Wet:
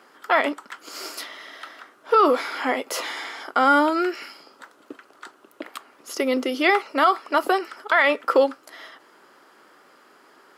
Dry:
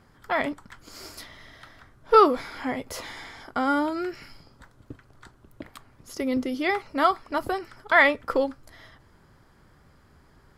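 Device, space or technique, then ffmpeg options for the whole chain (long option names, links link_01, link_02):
laptop speaker: -af "highpass=frequency=310:width=0.5412,highpass=frequency=310:width=1.3066,equalizer=frequency=1300:width_type=o:width=0.3:gain=4.5,equalizer=frequency=2800:width_type=o:width=0.26:gain=5.5,alimiter=limit=-15.5dB:level=0:latency=1:release=46,volume=7.5dB"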